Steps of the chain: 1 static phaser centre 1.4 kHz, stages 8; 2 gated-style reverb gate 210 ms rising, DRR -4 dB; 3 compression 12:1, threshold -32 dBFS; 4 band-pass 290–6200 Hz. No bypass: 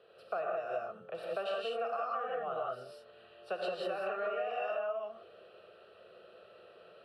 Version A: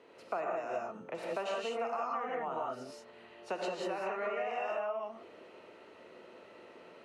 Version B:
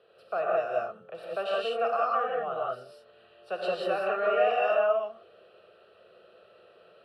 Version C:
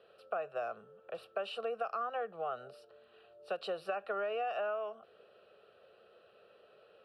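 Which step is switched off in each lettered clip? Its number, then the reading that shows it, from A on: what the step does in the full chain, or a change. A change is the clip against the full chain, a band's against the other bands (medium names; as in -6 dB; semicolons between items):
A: 1, 250 Hz band +6.0 dB; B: 3, mean gain reduction 4.0 dB; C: 2, momentary loudness spread change -8 LU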